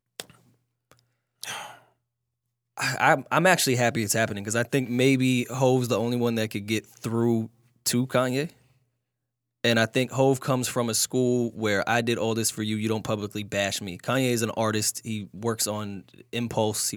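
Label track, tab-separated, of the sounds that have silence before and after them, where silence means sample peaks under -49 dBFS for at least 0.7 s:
2.780000	8.530000	sound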